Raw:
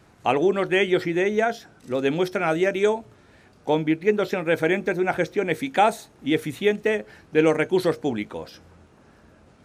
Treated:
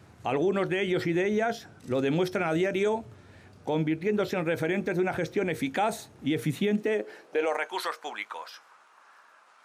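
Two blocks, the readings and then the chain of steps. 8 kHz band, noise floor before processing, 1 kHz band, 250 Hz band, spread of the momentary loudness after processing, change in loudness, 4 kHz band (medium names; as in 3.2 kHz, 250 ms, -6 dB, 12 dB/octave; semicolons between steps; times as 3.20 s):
-3.0 dB, -55 dBFS, -6.5 dB, -4.0 dB, 9 LU, -5.5 dB, -5.0 dB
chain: high-pass sweep 89 Hz -> 1.1 kHz, 6.21–7.77 s; peak limiter -17 dBFS, peak gain reduction 11 dB; trim -1 dB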